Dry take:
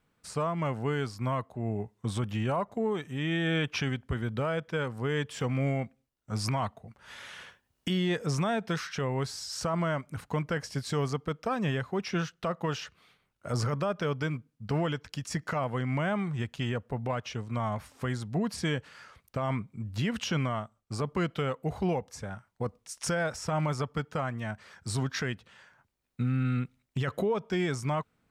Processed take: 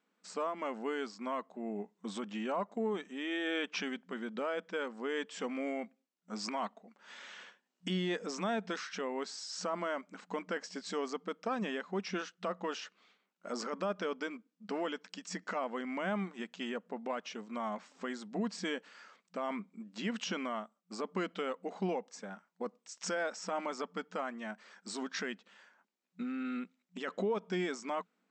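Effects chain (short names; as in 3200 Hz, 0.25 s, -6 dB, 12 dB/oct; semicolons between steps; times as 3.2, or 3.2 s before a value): FFT band-pass 180–8200 Hz; gain -4.5 dB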